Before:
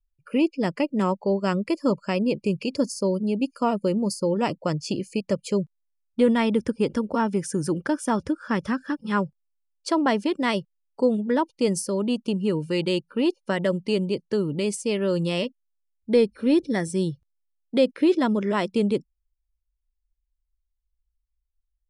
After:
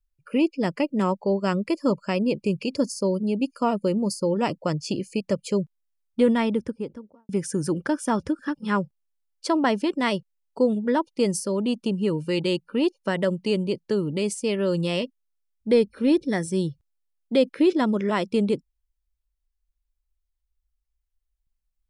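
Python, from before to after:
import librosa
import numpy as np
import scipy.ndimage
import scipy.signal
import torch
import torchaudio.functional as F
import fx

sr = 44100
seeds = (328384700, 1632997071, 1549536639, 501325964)

y = fx.studio_fade_out(x, sr, start_s=6.22, length_s=1.07)
y = fx.edit(y, sr, fx.cut(start_s=8.39, length_s=0.42), tone=tone)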